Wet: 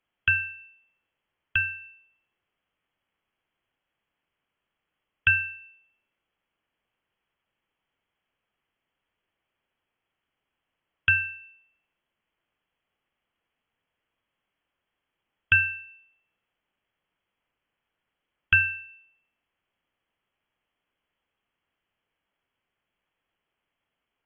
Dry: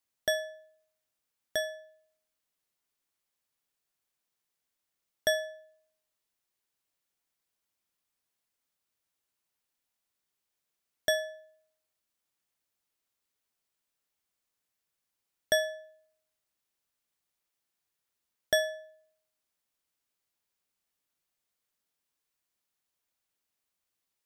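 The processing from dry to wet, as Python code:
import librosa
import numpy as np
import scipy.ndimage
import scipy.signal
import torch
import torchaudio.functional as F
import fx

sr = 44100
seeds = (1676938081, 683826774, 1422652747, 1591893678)

y = fx.freq_invert(x, sr, carrier_hz=3300)
y = fx.env_lowpass_down(y, sr, base_hz=2600.0, full_db=-35.5)
y = y * 10.0 ** (9.0 / 20.0)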